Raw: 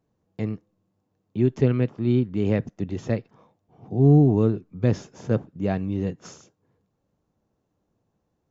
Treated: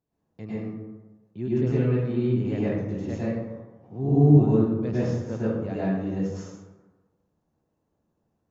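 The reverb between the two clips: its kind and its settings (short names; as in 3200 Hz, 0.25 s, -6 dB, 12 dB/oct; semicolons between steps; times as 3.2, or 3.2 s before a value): plate-style reverb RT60 1.2 s, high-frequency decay 0.45×, pre-delay 90 ms, DRR -9.5 dB; gain -11.5 dB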